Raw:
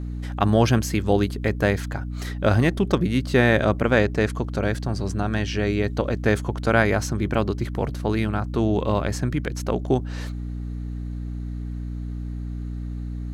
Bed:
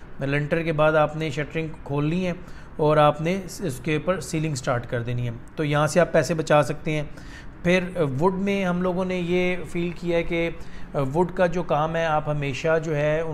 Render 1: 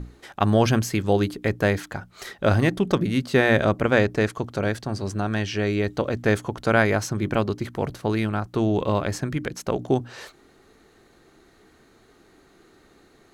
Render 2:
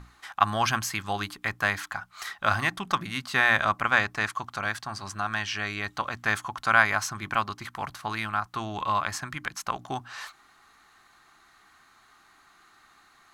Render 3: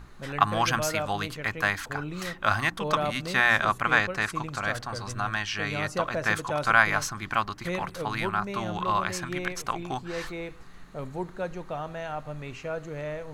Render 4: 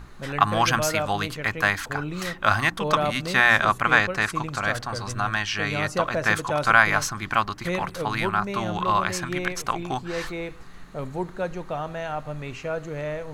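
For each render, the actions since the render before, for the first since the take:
notches 60/120/180/240/300 Hz
resonant low shelf 680 Hz -12.5 dB, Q 3; notch 930 Hz, Q 7.9
add bed -12 dB
gain +4 dB; limiter -2 dBFS, peak gain reduction 1.5 dB

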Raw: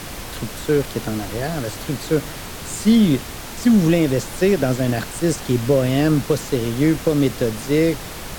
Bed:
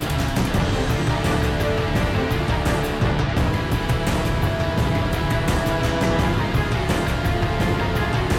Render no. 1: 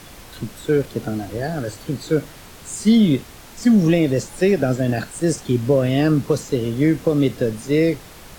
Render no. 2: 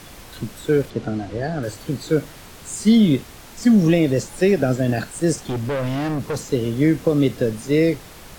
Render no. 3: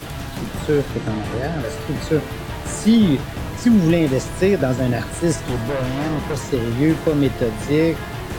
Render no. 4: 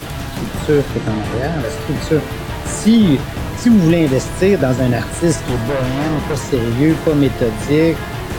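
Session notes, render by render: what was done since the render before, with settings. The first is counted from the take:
noise print and reduce 9 dB
0.9–1.63 air absorption 81 m; 5.34–6.52 overloaded stage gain 21 dB
add bed -8 dB
gain +4.5 dB; limiter -3 dBFS, peak gain reduction 3 dB

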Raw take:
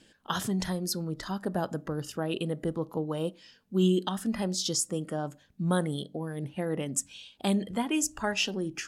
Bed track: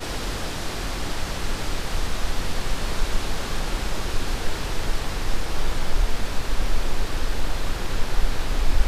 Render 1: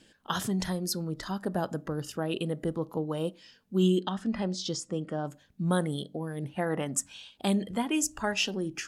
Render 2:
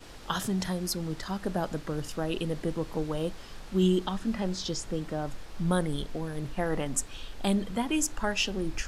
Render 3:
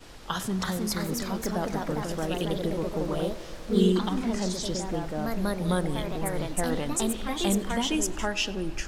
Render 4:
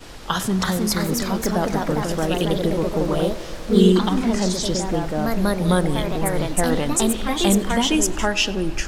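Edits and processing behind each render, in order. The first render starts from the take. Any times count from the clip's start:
4–5.25 air absorption 110 m; 6.55–7.31 band shelf 1100 Hz +8.5 dB
add bed track -18.5 dB
tape echo 0.101 s, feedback 89%, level -16.5 dB, low-pass 2700 Hz; echoes that change speed 0.364 s, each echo +2 st, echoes 2
gain +8 dB; limiter -3 dBFS, peak gain reduction 1 dB

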